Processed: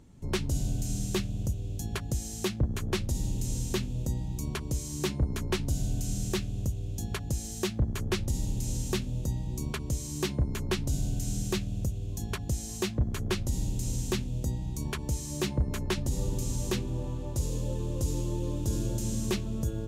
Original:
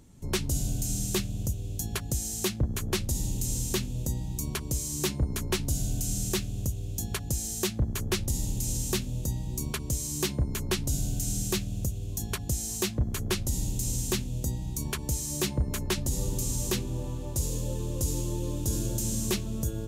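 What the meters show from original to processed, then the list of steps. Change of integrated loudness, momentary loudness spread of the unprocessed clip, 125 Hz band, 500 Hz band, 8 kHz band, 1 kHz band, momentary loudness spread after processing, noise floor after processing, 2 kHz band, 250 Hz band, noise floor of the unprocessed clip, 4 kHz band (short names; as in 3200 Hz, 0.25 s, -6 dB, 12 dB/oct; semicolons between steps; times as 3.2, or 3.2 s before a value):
-1.5 dB, 4 LU, 0.0 dB, 0.0 dB, -7.0 dB, -0.5 dB, 4 LU, -38 dBFS, -1.5 dB, 0.0 dB, -36 dBFS, -3.5 dB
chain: LPF 3500 Hz 6 dB/oct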